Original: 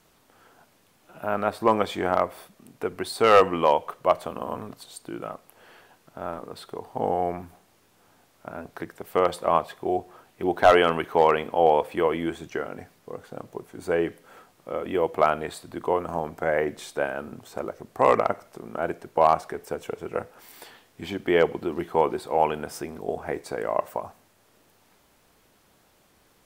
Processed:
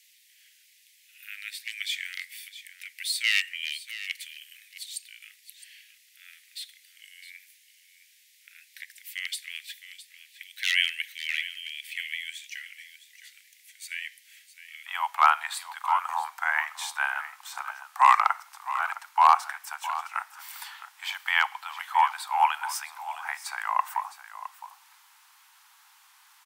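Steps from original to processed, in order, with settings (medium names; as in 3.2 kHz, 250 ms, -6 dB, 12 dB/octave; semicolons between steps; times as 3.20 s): steep high-pass 1.9 kHz 72 dB/octave, from 14.86 s 840 Hz; delay 662 ms -14 dB; trim +6 dB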